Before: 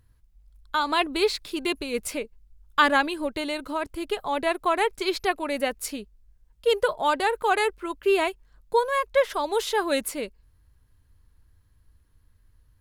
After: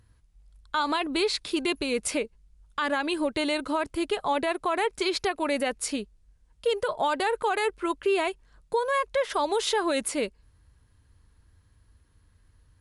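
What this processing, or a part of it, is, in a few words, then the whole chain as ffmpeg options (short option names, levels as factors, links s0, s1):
podcast mastering chain: -af "highpass=f=61:p=1,acompressor=threshold=0.0708:ratio=3,alimiter=limit=0.0891:level=0:latency=1:release=64,volume=1.68" -ar 24000 -c:a libmp3lame -b:a 128k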